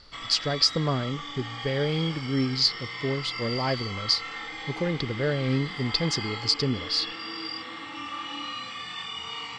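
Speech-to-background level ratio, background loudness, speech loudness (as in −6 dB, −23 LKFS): 7.5 dB, −34.5 LKFS, −27.0 LKFS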